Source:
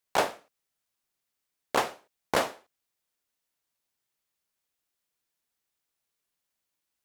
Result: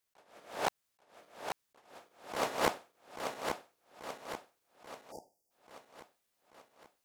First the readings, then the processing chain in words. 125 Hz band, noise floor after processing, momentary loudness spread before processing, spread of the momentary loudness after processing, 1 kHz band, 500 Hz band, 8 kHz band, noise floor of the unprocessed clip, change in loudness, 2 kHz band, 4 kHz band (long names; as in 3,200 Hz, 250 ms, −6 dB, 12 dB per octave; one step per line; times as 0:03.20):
−4.0 dB, −82 dBFS, 6 LU, 24 LU, −5.0 dB, −5.0 dB, −4.5 dB, −84 dBFS, −8.5 dB, −5.5 dB, −5.0 dB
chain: feedback delay that plays each chunk backwards 418 ms, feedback 70%, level −3 dB
time-frequency box erased 0:05.11–0:05.51, 910–4,600 Hz
level that may rise only so fast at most 130 dB per second